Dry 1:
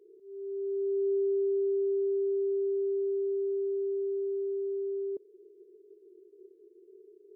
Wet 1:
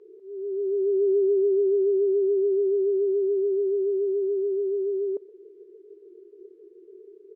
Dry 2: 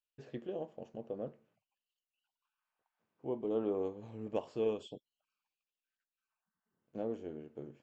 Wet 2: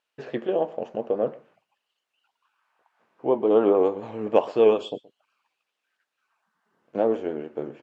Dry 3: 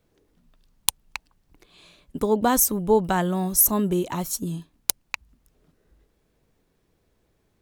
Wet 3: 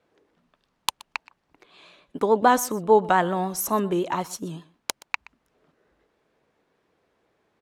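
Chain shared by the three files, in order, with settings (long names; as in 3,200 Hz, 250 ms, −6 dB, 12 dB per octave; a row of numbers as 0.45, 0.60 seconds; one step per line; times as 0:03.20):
pitch vibrato 7 Hz 57 cents
resonant band-pass 1,100 Hz, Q 0.55
single-tap delay 123 ms −21.5 dB
loudness normalisation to −24 LKFS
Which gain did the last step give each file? +11.5, +19.5, +5.5 decibels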